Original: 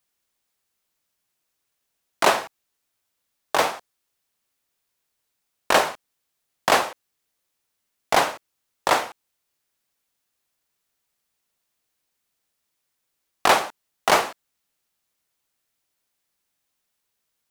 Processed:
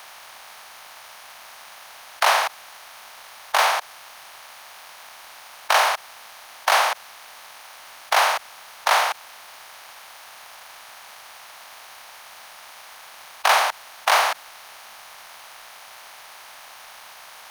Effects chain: spectral levelling over time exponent 0.4; saturation -6.5 dBFS, distortion -16 dB; high-pass 700 Hz 24 dB/octave; crossover distortion -49.5 dBFS; band-stop 7.6 kHz, Q 5.9

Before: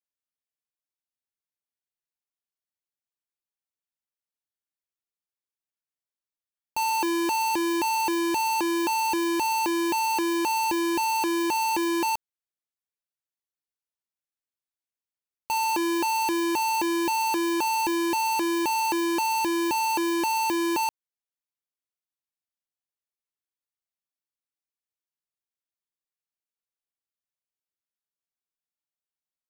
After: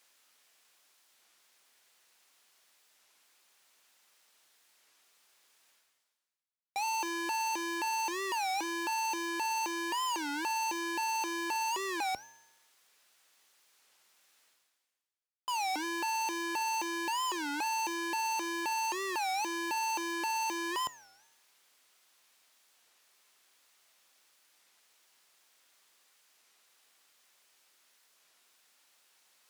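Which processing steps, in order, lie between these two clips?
frequency weighting A; reverse; upward compressor, threshold -33 dBFS; reverse; feedback comb 130 Hz, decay 1 s, harmonics all, mix 60%; warped record 33 1/3 rpm, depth 250 cents

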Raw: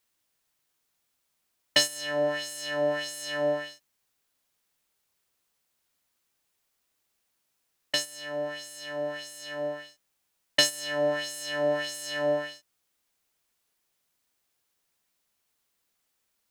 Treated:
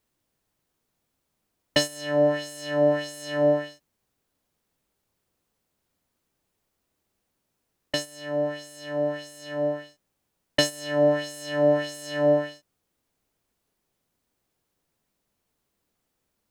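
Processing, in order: tilt shelf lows +7.5 dB, about 780 Hz; trim +4 dB

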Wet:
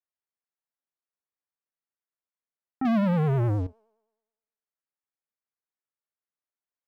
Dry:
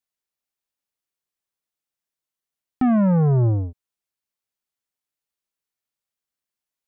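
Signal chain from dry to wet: low-pass 2 kHz 24 dB/octave; bass shelf 190 Hz -11 dB; 2.85–3.67 s: waveshaping leveller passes 3; feedback comb 220 Hz, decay 1.1 s, mix 40%; vibrato 9.6 Hz 74 cents; trim -1 dB

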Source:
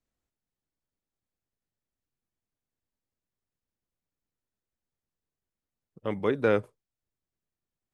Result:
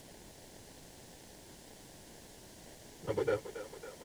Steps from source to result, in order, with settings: comb 2.2 ms, depth 93%; compression 3:1, threshold -43 dBFS, peak gain reduction 20 dB; added noise violet -50 dBFS; plain phase-vocoder stretch 0.51×; in parallel at -12 dB: sample-and-hold 35×; on the sum: distance through air 80 m; on a send: thinning echo 276 ms, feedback 78%, high-pass 420 Hz, level -10.5 dB; on the sum: trim +9.5 dB

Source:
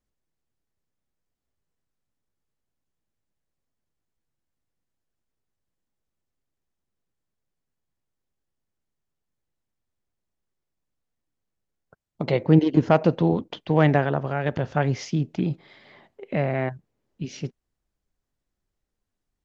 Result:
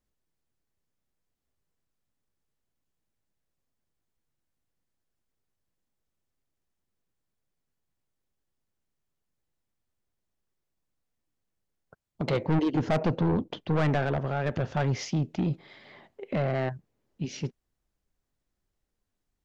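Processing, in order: 12.93–13.76 s: tilt shelf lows +3.5 dB, about 700 Hz; saturation -20.5 dBFS, distortion -6 dB

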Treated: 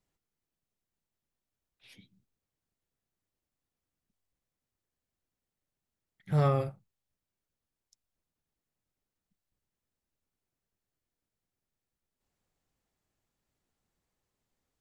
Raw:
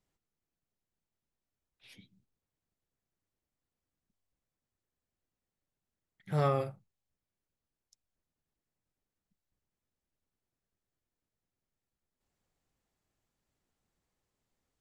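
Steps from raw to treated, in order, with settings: 6.29–6.69 s: bass shelf 140 Hz +10.5 dB

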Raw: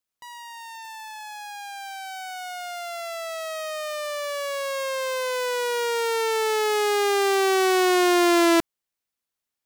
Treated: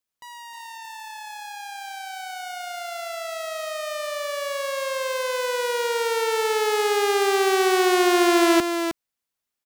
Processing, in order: delay 311 ms -7 dB

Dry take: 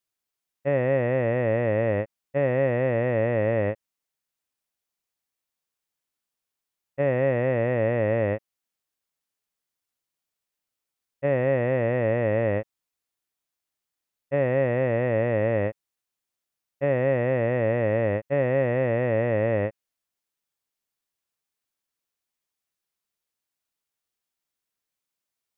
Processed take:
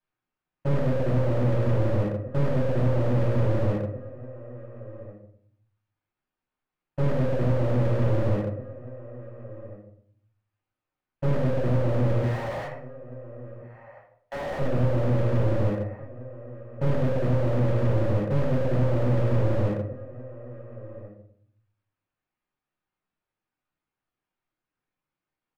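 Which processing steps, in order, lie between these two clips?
12.20–14.59 s: high-pass 820 Hz 24 dB/octave; reverb removal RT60 0.76 s; low-pass 2 kHz; waveshaping leveller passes 2; compression 12:1, threshold -31 dBFS, peak gain reduction 14 dB; echo from a far wall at 240 m, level -20 dB; reverberation RT60 0.60 s, pre-delay 7 ms, DRR -6.5 dB; slew-rate limiter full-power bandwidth 20 Hz; trim +1.5 dB

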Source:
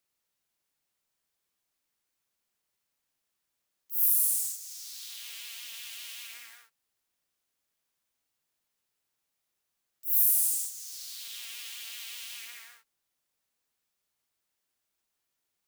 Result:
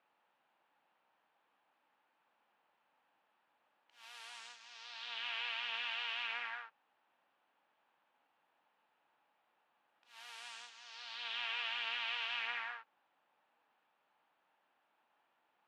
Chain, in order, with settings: cabinet simulation 320–2500 Hz, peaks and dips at 400 Hz -7 dB, 850 Hz +8 dB, 2.1 kHz -7 dB; trim +13.5 dB

